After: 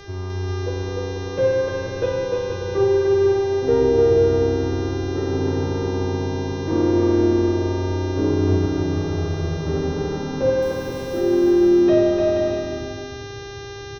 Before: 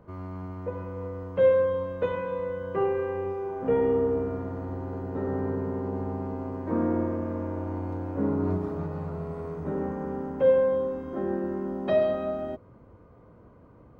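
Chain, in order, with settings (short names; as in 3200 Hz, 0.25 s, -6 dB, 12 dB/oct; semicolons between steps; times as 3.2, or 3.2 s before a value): resonant low shelf 150 Hz +9.5 dB, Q 3; small resonant body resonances 340/3500 Hz, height 18 dB, ringing for 65 ms; 10.62–11.21 requantised 8-bit, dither none; buzz 400 Hz, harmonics 16, -43 dBFS -4 dB/oct; bouncing-ball echo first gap 0.3 s, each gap 0.6×, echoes 5; on a send at -4.5 dB: reverb RT60 0.85 s, pre-delay 4 ms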